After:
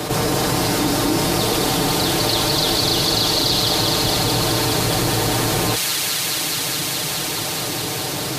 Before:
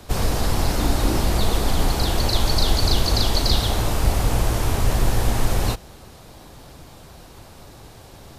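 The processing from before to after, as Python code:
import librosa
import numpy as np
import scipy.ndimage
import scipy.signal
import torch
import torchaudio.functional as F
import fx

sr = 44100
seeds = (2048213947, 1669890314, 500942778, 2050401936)

y = scipy.signal.sosfilt(scipy.signal.butter(2, 120.0, 'highpass', fs=sr, output='sos'), x)
y = fx.peak_eq(y, sr, hz=370.0, db=5.5, octaves=0.32)
y = y + 0.65 * np.pad(y, (int(6.6 * sr / 1000.0), 0))[:len(y)]
y = fx.echo_wet_highpass(y, sr, ms=210, feedback_pct=84, hz=2300.0, wet_db=-4.0)
y = fx.env_flatten(y, sr, amount_pct=70)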